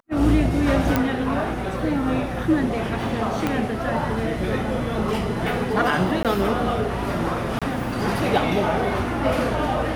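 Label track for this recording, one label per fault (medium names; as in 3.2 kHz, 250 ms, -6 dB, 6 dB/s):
0.960000	0.960000	pop -6 dBFS
3.470000	3.470000	pop -9 dBFS
6.230000	6.250000	dropout 17 ms
7.590000	7.620000	dropout 26 ms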